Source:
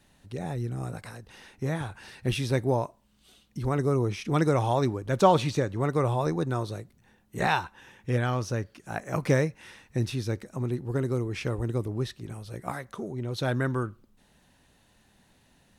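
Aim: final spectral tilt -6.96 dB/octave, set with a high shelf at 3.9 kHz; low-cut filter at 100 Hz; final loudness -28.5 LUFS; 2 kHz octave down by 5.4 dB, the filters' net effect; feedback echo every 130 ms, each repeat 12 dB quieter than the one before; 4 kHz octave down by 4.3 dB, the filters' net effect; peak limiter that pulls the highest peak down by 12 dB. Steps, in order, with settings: high-pass 100 Hz; peaking EQ 2 kHz -7 dB; treble shelf 3.9 kHz +4.5 dB; peaking EQ 4 kHz -6 dB; peak limiter -19 dBFS; feedback delay 130 ms, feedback 25%, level -12 dB; trim +3.5 dB

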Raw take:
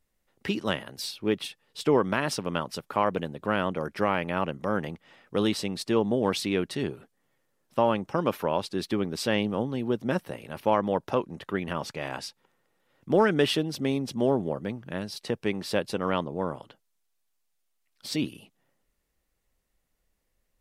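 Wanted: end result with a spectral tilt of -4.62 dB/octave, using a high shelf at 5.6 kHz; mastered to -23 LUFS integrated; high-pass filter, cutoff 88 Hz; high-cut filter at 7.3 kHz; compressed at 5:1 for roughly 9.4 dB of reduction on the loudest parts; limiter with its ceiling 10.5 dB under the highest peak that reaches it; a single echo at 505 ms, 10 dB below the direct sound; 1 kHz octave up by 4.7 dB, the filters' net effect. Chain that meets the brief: high-pass 88 Hz; low-pass 7.3 kHz; peaking EQ 1 kHz +5.5 dB; treble shelf 5.6 kHz +3.5 dB; compression 5:1, threshold -25 dBFS; peak limiter -21.5 dBFS; delay 505 ms -10 dB; trim +12 dB

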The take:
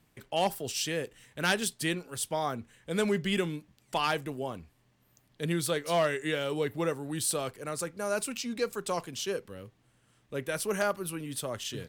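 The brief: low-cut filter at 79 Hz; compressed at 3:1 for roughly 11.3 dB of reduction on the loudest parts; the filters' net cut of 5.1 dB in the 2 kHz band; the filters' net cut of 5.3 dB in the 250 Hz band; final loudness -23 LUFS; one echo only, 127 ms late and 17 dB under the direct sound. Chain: high-pass 79 Hz; peaking EQ 250 Hz -8 dB; peaking EQ 2 kHz -7 dB; compression 3:1, threshold -40 dBFS; delay 127 ms -17 dB; trim +19 dB

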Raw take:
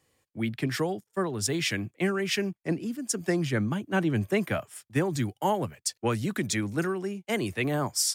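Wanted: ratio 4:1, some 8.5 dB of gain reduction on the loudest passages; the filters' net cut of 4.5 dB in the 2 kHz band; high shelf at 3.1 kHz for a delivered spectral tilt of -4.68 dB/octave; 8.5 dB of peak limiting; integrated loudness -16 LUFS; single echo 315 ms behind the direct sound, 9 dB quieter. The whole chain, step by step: peaking EQ 2 kHz -8.5 dB; treble shelf 3.1 kHz +7.5 dB; compression 4:1, threshold -28 dBFS; peak limiter -24 dBFS; delay 315 ms -9 dB; trim +18 dB

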